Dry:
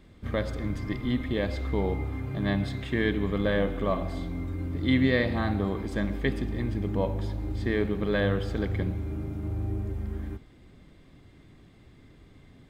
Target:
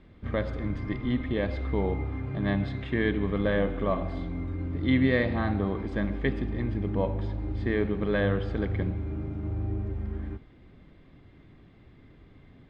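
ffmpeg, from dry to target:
ffmpeg -i in.wav -af "lowpass=3100" out.wav

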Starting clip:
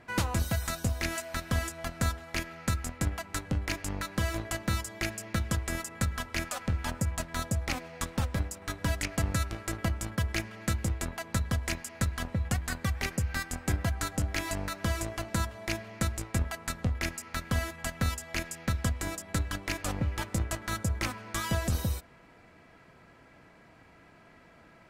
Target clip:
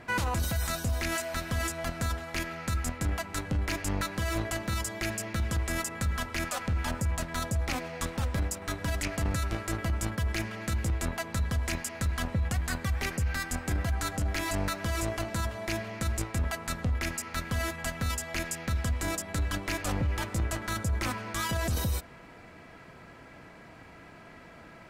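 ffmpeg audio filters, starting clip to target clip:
ffmpeg -i in.wav -af "alimiter=level_in=4.5dB:limit=-24dB:level=0:latency=1:release=10,volume=-4.5dB,volume=6.5dB" out.wav

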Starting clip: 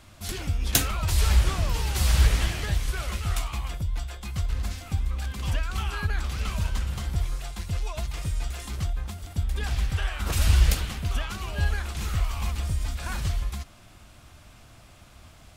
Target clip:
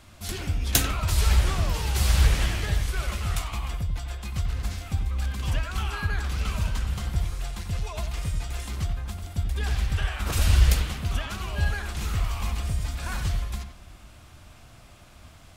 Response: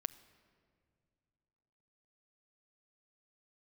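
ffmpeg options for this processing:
-filter_complex "[0:a]asplit=2[link_01][link_02];[link_02]lowpass=3300[link_03];[1:a]atrim=start_sample=2205,adelay=91[link_04];[link_03][link_04]afir=irnorm=-1:irlink=0,volume=-5.5dB[link_05];[link_01][link_05]amix=inputs=2:normalize=0"

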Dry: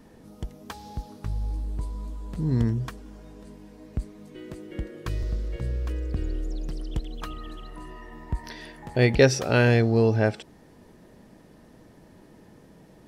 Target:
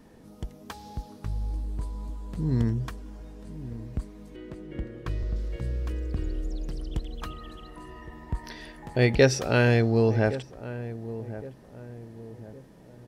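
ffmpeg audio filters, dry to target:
ffmpeg -i in.wav -filter_complex "[0:a]asettb=1/sr,asplit=3[link_01][link_02][link_03];[link_01]atrim=end=4.364[link_04];[link_02]atrim=start=4.36:end=5.36,asetpts=PTS-STARTPTS,afade=type=in:duration=0.004:curve=qsin,afade=type=out:start_time=0.996:duration=0.004:curve=qsin,highshelf=frequency=5100:gain=-11.5[link_05];[link_03]atrim=start=5.356[link_06];[link_04][link_05]acrossfade=duration=0.004:curve1=hsin:curve2=qsin[link_07];[link_07][link_06]acrossfade=duration=0.004:curve1=qsin:curve2=hsin,asplit=2[link_08][link_09];[link_09]adelay=1114,lowpass=frequency=930:poles=1,volume=-13.5dB,asplit=2[link_10][link_11];[link_11]adelay=1114,lowpass=frequency=930:poles=1,volume=0.43,asplit=2[link_12][link_13];[link_13]adelay=1114,lowpass=frequency=930:poles=1,volume=0.43,asplit=2[link_14][link_15];[link_15]adelay=1114,lowpass=frequency=930:poles=1,volume=0.43[link_16];[link_10][link_12][link_14][link_16]amix=inputs=4:normalize=0[link_17];[link_08][link_17]amix=inputs=2:normalize=0,volume=-1.5dB" out.wav

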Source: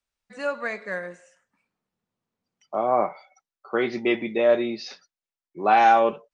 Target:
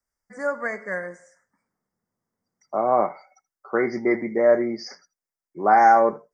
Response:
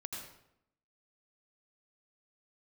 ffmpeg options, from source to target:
-filter_complex "[0:a]asuperstop=centerf=3200:order=20:qfactor=1.3,asplit=2[link_01][link_02];[1:a]atrim=start_sample=2205,atrim=end_sample=3528[link_03];[link_02][link_03]afir=irnorm=-1:irlink=0,volume=-8.5dB[link_04];[link_01][link_04]amix=inputs=2:normalize=0"

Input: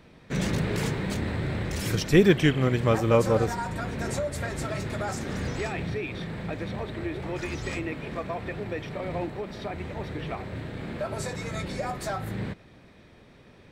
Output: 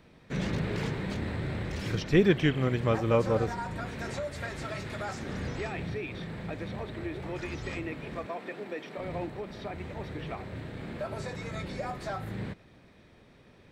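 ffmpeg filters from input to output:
ffmpeg -i in.wav -filter_complex "[0:a]acrossover=split=5300[link_01][link_02];[link_02]acompressor=threshold=-56dB:ratio=4:attack=1:release=60[link_03];[link_01][link_03]amix=inputs=2:normalize=0,asettb=1/sr,asplit=3[link_04][link_05][link_06];[link_04]atrim=end=3.864[link_07];[link_05]atrim=start=3.86:end=5.21,asetpts=PTS-STARTPTS,afade=type=in:duration=0.004:curve=qsin,afade=type=out:start_time=1.346:duration=0.004:curve=qsin,tiltshelf=frequency=970:gain=-3[link_08];[link_06]atrim=start=5.206[link_09];[link_07][link_08]acrossfade=duration=0.004:curve1=hsin:curve2=qsin[link_10];[link_10][link_09]acrossfade=duration=0.004:curve1=qsin:curve2=hsin,asettb=1/sr,asplit=3[link_11][link_12][link_13];[link_11]atrim=end=8.264[link_14];[link_12]atrim=start=8.26:end=8.98,asetpts=PTS-STARTPTS,afade=type=in:duration=0.004:curve=qsin,afade=type=out:start_time=0.716:duration=0.004:curve=qsin,highpass=frequency=210:width=0.5412,highpass=frequency=210:width=1.3066[link_15];[link_13]atrim=start=8.976[link_16];[link_14][link_15]acrossfade=duration=0.004:curve1=hsin:curve2=qsin[link_17];[link_17][link_16]acrossfade=duration=0.004:curve1=qsin:curve2=hsin,volume=-4dB" out.wav

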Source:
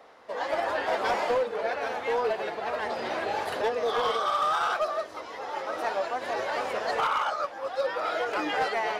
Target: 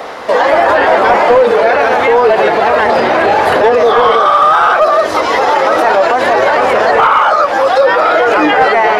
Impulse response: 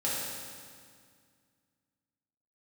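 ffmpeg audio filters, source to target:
-filter_complex "[0:a]acrossover=split=2500[link_01][link_02];[link_02]acompressor=threshold=-51dB:ratio=6[link_03];[link_01][link_03]amix=inputs=2:normalize=0,alimiter=level_in=29.5dB:limit=-1dB:release=50:level=0:latency=1,volume=-1dB"

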